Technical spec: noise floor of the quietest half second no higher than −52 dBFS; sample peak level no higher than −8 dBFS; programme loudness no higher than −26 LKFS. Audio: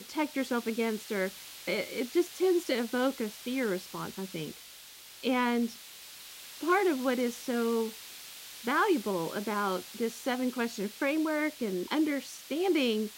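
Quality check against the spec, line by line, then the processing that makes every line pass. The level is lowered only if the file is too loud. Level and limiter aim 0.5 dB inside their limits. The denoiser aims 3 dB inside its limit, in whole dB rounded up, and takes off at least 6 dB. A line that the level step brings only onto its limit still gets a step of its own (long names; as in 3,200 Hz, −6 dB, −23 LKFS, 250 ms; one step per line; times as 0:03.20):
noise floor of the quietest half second −50 dBFS: out of spec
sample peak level −13.0 dBFS: in spec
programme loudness −31.0 LKFS: in spec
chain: broadband denoise 6 dB, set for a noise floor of −50 dBFS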